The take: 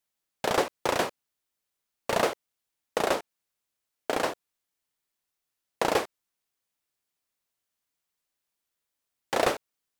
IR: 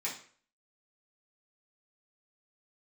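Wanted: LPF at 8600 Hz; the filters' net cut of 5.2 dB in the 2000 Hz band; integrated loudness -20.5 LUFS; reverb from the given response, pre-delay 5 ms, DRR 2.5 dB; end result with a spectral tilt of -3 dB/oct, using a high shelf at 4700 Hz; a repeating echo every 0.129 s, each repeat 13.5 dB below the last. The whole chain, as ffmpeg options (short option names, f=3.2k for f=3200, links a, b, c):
-filter_complex "[0:a]lowpass=8.6k,equalizer=f=2k:t=o:g=-7.5,highshelf=f=4.7k:g=3.5,aecho=1:1:129|258:0.211|0.0444,asplit=2[a][b];[1:a]atrim=start_sample=2205,adelay=5[c];[b][c]afir=irnorm=-1:irlink=0,volume=-6dB[d];[a][d]amix=inputs=2:normalize=0,volume=8.5dB"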